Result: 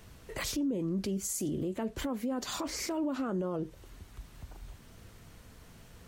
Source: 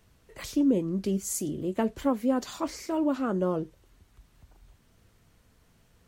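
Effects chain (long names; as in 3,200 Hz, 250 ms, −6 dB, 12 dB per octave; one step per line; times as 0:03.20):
downward compressor 3 to 1, threshold −37 dBFS, peak gain reduction 13 dB
brickwall limiter −35 dBFS, peak gain reduction 10 dB
level +9 dB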